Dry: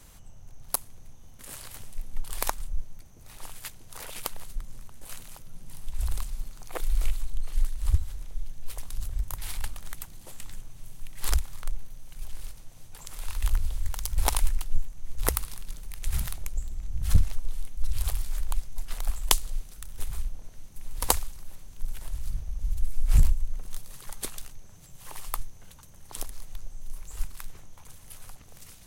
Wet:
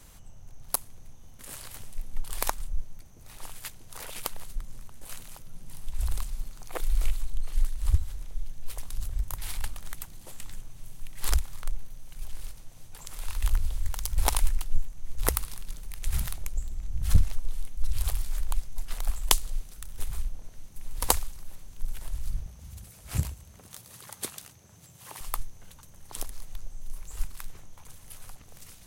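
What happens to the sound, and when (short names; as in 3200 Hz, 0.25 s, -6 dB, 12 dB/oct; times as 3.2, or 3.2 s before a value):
22.46–25.21 HPF 77 Hz 24 dB/oct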